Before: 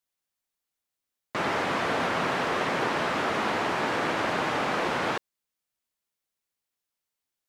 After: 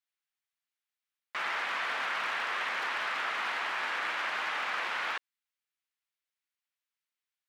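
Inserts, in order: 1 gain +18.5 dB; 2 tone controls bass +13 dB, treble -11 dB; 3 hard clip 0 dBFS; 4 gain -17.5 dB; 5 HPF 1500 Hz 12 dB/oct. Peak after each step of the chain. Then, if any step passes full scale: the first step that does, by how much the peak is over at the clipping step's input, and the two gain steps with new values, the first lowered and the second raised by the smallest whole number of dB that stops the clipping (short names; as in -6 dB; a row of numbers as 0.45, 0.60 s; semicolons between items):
+4.0, +5.5, 0.0, -17.5, -20.5 dBFS; step 1, 5.5 dB; step 1 +12.5 dB, step 4 -11.5 dB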